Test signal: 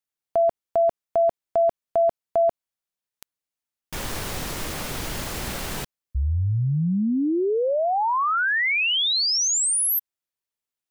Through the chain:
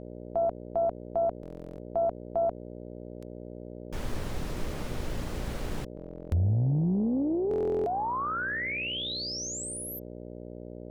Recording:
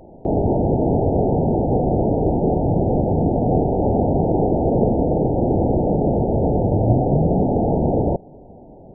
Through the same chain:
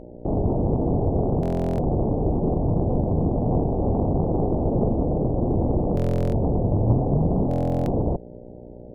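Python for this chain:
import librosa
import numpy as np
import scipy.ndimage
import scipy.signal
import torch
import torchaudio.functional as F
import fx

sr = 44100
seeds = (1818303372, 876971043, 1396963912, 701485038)

y = fx.tilt_eq(x, sr, slope=-2.0)
y = fx.dmg_buzz(y, sr, base_hz=60.0, harmonics=10, level_db=-34.0, tilt_db=0, odd_only=False)
y = fx.buffer_glitch(y, sr, at_s=(1.41, 5.95, 7.49), block=1024, repeats=15)
y = fx.doppler_dist(y, sr, depth_ms=0.53)
y = F.gain(torch.from_numpy(y), -8.5).numpy()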